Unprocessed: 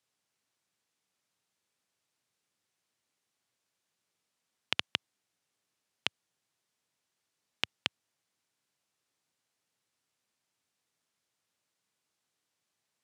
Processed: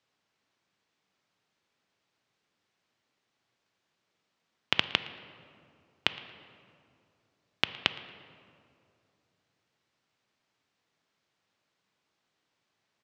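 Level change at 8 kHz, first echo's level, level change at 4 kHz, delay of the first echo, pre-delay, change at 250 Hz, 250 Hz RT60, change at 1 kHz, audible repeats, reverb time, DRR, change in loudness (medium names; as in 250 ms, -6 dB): -2.0 dB, -22.0 dB, +5.0 dB, 114 ms, 3 ms, +8.0 dB, 2.9 s, +7.0 dB, 1, 2.5 s, 11.0 dB, +5.5 dB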